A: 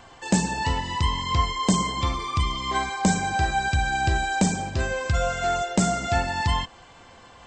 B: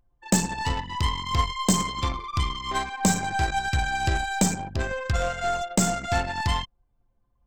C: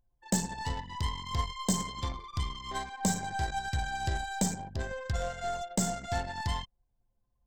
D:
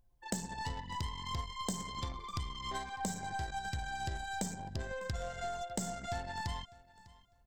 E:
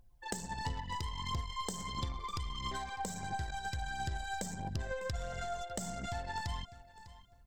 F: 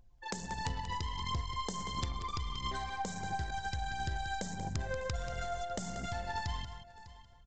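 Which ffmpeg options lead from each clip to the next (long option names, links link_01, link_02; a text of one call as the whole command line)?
ffmpeg -i in.wav -af "anlmdn=63.1,aeval=exprs='0.316*(cos(1*acos(clip(val(0)/0.316,-1,1)))-cos(1*PI/2))+0.0282*(cos(3*acos(clip(val(0)/0.316,-1,1)))-cos(3*PI/2))+0.0126*(cos(8*acos(clip(val(0)/0.316,-1,1)))-cos(8*PI/2))':channel_layout=same,crystalizer=i=1:c=0" out.wav
ffmpeg -i in.wav -af "equalizer=frequency=315:width_type=o:width=0.33:gain=-5,equalizer=frequency=1250:width_type=o:width=0.33:gain=-8,equalizer=frequency=2500:width_type=o:width=0.33:gain=-9,volume=-7dB" out.wav
ffmpeg -i in.wav -af "acompressor=threshold=-41dB:ratio=4,aecho=1:1:601|1202:0.0891|0.0196,volume=4dB" out.wav
ffmpeg -i in.wav -af "acompressor=threshold=-40dB:ratio=3,aphaser=in_gain=1:out_gain=1:delay=2.5:decay=0.39:speed=1.5:type=triangular,volume=3dB" out.wav
ffmpeg -i in.wav -af "aresample=16000,aeval=exprs='(mod(15*val(0)+1,2)-1)/15':channel_layout=same,aresample=44100,aecho=1:1:185:0.316,volume=1dB" out.wav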